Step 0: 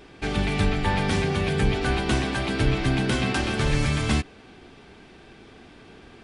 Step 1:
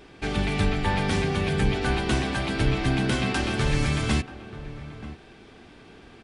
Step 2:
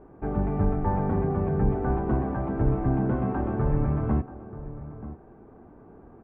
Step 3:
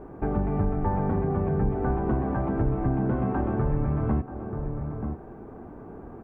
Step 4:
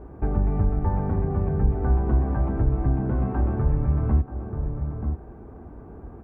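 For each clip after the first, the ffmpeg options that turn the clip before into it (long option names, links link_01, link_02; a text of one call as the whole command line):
ffmpeg -i in.wav -filter_complex "[0:a]asplit=2[link_01][link_02];[link_02]adelay=932.9,volume=-14dB,highshelf=frequency=4000:gain=-21[link_03];[link_01][link_03]amix=inputs=2:normalize=0,volume=-1dB" out.wav
ffmpeg -i in.wav -af "lowpass=frequency=1100:width=0.5412,lowpass=frequency=1100:width=1.3066" out.wav
ffmpeg -i in.wav -af "acompressor=threshold=-33dB:ratio=2.5,volume=7.5dB" out.wav
ffmpeg -i in.wav -af "equalizer=frequency=60:width=1:gain=13.5,volume=-3dB" out.wav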